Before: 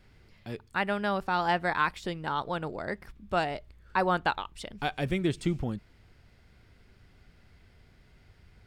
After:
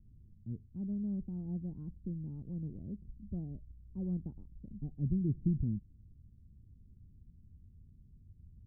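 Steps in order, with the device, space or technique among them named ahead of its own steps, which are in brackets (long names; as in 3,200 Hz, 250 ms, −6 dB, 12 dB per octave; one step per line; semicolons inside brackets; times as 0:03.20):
the neighbour's flat through the wall (low-pass filter 240 Hz 24 dB per octave; parametric band 80 Hz +3 dB)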